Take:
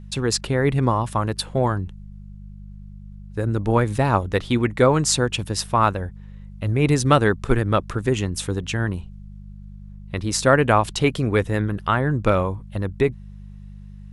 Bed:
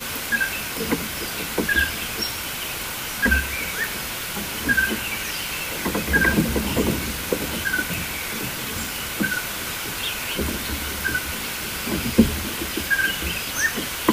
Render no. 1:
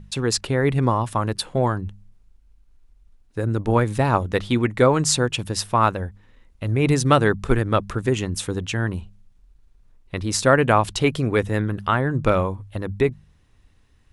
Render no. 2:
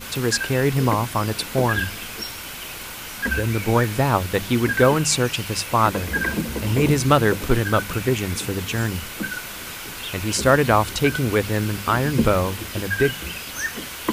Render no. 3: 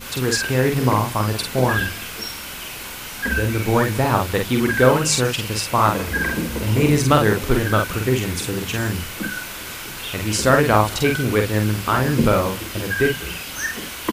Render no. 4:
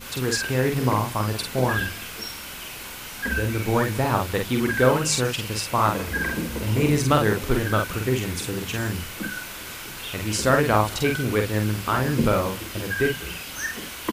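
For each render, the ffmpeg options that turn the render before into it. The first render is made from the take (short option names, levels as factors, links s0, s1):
-af "bandreject=f=50:t=h:w=4,bandreject=f=100:t=h:w=4,bandreject=f=150:t=h:w=4,bandreject=f=200:t=h:w=4"
-filter_complex "[1:a]volume=0.562[s0];[0:a][s0]amix=inputs=2:normalize=0"
-filter_complex "[0:a]asplit=2[s0][s1];[s1]adelay=47,volume=0.631[s2];[s0][s2]amix=inputs=2:normalize=0,aecho=1:1:188:0.0668"
-af "volume=0.631"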